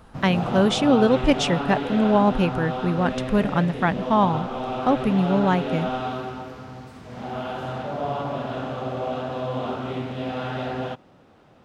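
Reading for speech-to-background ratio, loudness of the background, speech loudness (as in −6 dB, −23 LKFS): 7.0 dB, −29.0 LKFS, −22.0 LKFS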